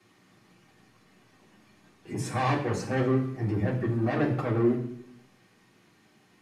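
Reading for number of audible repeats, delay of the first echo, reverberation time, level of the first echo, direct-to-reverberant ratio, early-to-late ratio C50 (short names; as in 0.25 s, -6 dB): none, none, 0.70 s, none, -5.0 dB, 8.0 dB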